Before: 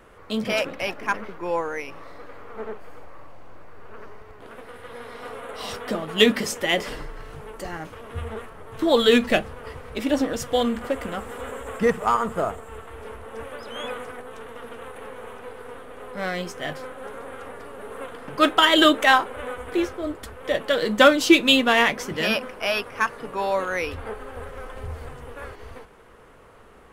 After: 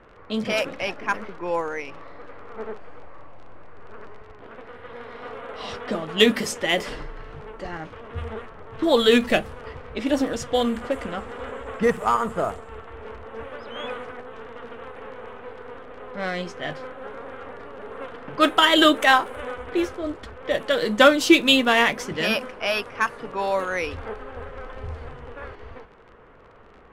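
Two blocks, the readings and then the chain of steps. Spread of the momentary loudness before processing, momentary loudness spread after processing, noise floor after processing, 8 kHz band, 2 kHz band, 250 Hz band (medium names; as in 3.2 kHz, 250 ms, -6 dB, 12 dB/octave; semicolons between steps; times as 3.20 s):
23 LU, 23 LU, -47 dBFS, -0.5 dB, 0.0 dB, 0.0 dB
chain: crackle 31 per s -33 dBFS; level-controlled noise filter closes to 2.4 kHz, open at -19 dBFS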